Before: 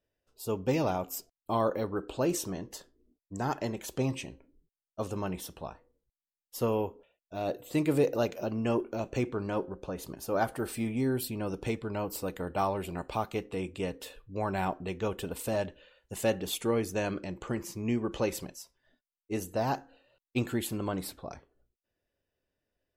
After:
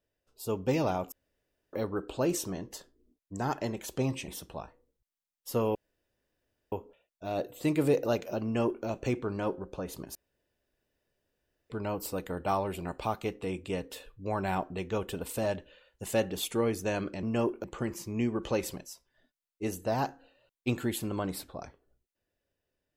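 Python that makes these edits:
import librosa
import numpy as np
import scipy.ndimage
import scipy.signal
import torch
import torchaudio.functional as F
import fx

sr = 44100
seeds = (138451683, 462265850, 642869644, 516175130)

y = fx.edit(x, sr, fx.room_tone_fill(start_s=1.12, length_s=0.61),
    fx.cut(start_s=4.28, length_s=1.07),
    fx.insert_room_tone(at_s=6.82, length_s=0.97),
    fx.duplicate(start_s=8.54, length_s=0.41, to_s=17.33),
    fx.room_tone_fill(start_s=10.25, length_s=1.55), tone=tone)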